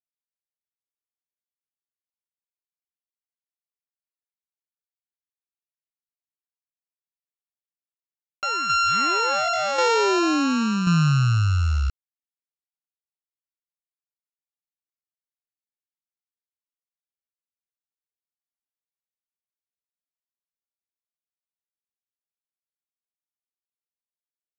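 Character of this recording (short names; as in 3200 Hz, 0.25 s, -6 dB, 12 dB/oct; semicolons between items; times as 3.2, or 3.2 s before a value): a buzz of ramps at a fixed pitch in blocks of 32 samples; tremolo saw down 0.92 Hz, depth 50%; a quantiser's noise floor 8-bit, dither none; µ-law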